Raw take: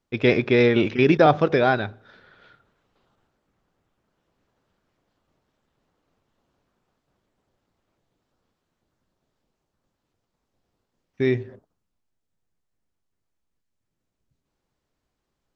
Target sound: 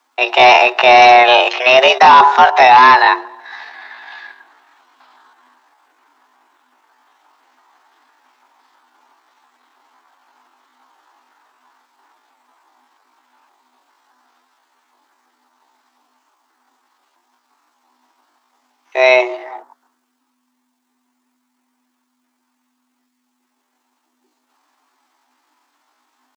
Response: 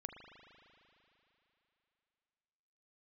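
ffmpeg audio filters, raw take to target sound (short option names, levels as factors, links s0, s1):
-af "atempo=0.59,afreqshift=250,lowshelf=f=680:t=q:w=3:g=-9.5,apsyclip=9.44,volume=0.841"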